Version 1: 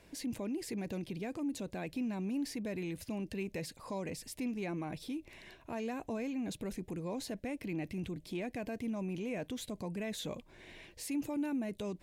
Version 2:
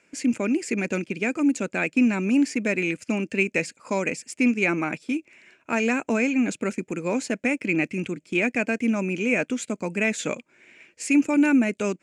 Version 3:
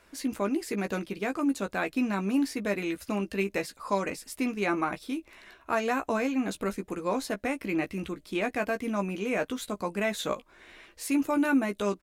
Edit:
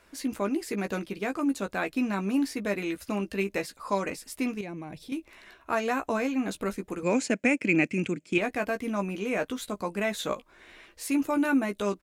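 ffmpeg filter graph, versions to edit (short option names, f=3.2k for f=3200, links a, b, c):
-filter_complex "[2:a]asplit=3[a][b][c];[a]atrim=end=4.612[d];[0:a]atrim=start=4.608:end=5.122[e];[b]atrim=start=5.118:end=7.032[f];[1:a]atrim=start=7.028:end=8.382[g];[c]atrim=start=8.378[h];[d][e]acrossfade=d=0.004:c1=hsin:c2=hsin[i];[i][f]acrossfade=d=0.004:c1=hsin:c2=hsin[j];[j][g]acrossfade=d=0.004:c1=hsin:c2=hsin[k];[k][h]acrossfade=d=0.004:c1=hsin:c2=hsin"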